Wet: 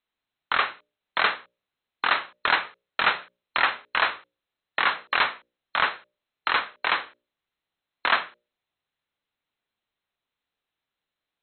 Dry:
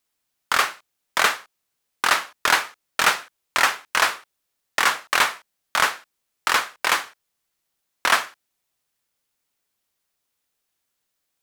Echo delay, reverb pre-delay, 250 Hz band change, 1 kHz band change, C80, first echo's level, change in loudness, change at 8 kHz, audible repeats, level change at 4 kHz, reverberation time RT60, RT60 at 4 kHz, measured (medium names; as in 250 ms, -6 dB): no echo, no reverb, -3.5 dB, -3.0 dB, no reverb, no echo, -3.5 dB, under -40 dB, no echo, -4.0 dB, no reverb, no reverb